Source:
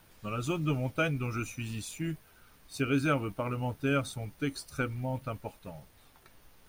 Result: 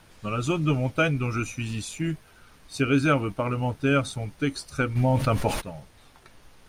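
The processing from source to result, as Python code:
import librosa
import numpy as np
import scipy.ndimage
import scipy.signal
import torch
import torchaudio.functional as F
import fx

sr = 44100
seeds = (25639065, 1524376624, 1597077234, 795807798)

y = scipy.signal.sosfilt(scipy.signal.butter(2, 9500.0, 'lowpass', fs=sr, output='sos'), x)
y = fx.env_flatten(y, sr, amount_pct=70, at=(4.95, 5.6), fade=0.02)
y = F.gain(torch.from_numpy(y), 6.5).numpy()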